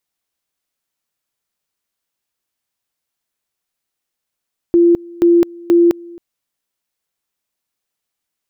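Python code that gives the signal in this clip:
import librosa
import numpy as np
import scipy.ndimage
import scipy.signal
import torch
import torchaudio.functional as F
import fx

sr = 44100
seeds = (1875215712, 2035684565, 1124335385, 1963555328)

y = fx.two_level_tone(sr, hz=343.0, level_db=-6.5, drop_db=24.5, high_s=0.21, low_s=0.27, rounds=3)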